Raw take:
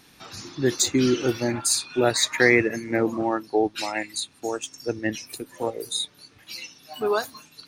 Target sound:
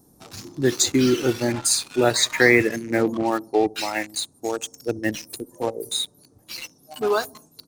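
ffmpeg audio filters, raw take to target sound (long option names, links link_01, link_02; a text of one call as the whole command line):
ffmpeg -i in.wav -filter_complex "[0:a]asplit=2[link_01][link_02];[link_02]adelay=66,lowpass=frequency=4700:poles=1,volume=-23dB,asplit=2[link_03][link_04];[link_04]adelay=66,lowpass=frequency=4700:poles=1,volume=0.53,asplit=2[link_05][link_06];[link_06]adelay=66,lowpass=frequency=4700:poles=1,volume=0.53,asplit=2[link_07][link_08];[link_08]adelay=66,lowpass=frequency=4700:poles=1,volume=0.53[link_09];[link_01][link_03][link_05][link_07][link_09]amix=inputs=5:normalize=0,acrossover=split=840|7100[link_10][link_11][link_12];[link_11]acrusher=bits=5:mix=0:aa=0.5[link_13];[link_10][link_13][link_12]amix=inputs=3:normalize=0,volume=2dB" out.wav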